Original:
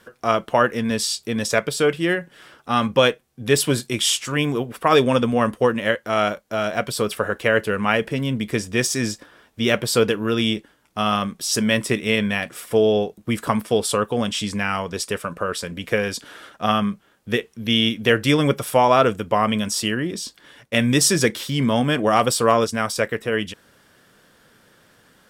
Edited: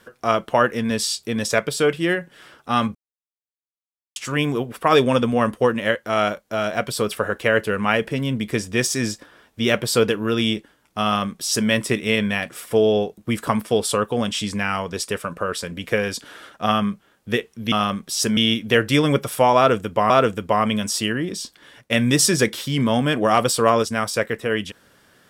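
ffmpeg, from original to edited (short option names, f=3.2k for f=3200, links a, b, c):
-filter_complex "[0:a]asplit=6[a][b][c][d][e][f];[a]atrim=end=2.95,asetpts=PTS-STARTPTS,afade=t=out:st=2.946:d=0.004:c=hsin[g];[b]atrim=start=2.95:end=4.16,asetpts=PTS-STARTPTS,volume=0[h];[c]atrim=start=4.16:end=17.722,asetpts=PTS-STARTPTS,afade=t=in:d=0.004:c=hsin[i];[d]atrim=start=11.038:end=11.692[j];[e]atrim=start=17.718:end=19.452[k];[f]atrim=start=18.918[l];[g][h][i]concat=n=3:v=0:a=1[m];[m][j]acrossfade=d=0.004:c1=hsin:c2=hsin[n];[n][k]acrossfade=d=0.004:c1=hsin:c2=hsin[o];[o][l]acrossfade=d=0.004:c1=hsin:c2=hsin"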